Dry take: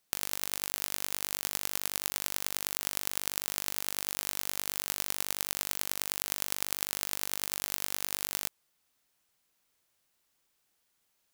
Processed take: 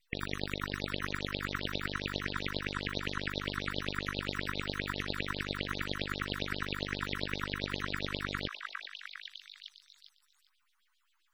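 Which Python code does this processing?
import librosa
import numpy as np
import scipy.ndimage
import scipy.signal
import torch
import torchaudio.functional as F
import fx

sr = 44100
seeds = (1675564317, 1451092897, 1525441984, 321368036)

p1 = fx.filter_lfo_highpass(x, sr, shape='sine', hz=7.5, low_hz=990.0, high_hz=3700.0, q=3.5)
p2 = np.maximum(p1, 0.0)
p3 = fx.spec_topn(p2, sr, count=64)
p4 = p3 + fx.echo_stepped(p3, sr, ms=403, hz=1300.0, octaves=0.7, feedback_pct=70, wet_db=-1, dry=0)
y = F.gain(torch.from_numpy(p4), 5.5).numpy()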